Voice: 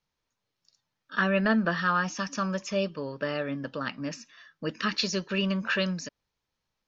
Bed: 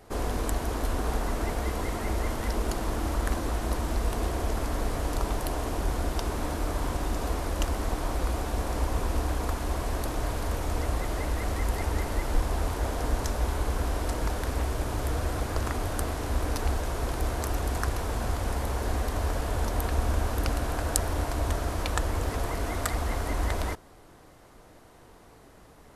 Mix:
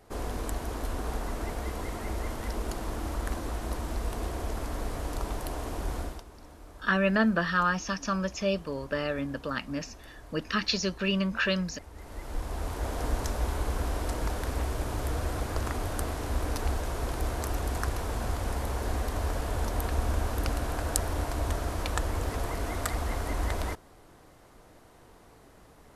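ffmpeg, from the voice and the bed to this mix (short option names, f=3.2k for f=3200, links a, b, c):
-filter_complex "[0:a]adelay=5700,volume=0dB[a];[1:a]volume=13dB,afade=t=out:st=5.99:d=0.25:silence=0.177828,afade=t=in:st=11.93:d=1.1:silence=0.133352[b];[a][b]amix=inputs=2:normalize=0"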